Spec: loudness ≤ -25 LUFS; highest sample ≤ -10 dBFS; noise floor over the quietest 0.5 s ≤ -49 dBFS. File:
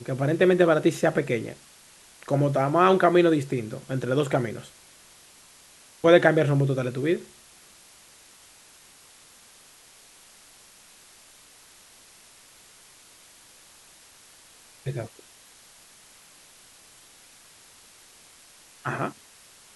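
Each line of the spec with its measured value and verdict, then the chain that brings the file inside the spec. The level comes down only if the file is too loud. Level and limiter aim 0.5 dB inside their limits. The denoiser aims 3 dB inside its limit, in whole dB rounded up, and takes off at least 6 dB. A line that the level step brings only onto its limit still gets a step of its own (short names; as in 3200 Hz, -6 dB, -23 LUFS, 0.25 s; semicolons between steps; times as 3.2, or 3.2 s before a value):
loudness -23.0 LUFS: fail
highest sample -3.5 dBFS: fail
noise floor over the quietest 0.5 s -53 dBFS: OK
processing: gain -2.5 dB; limiter -10.5 dBFS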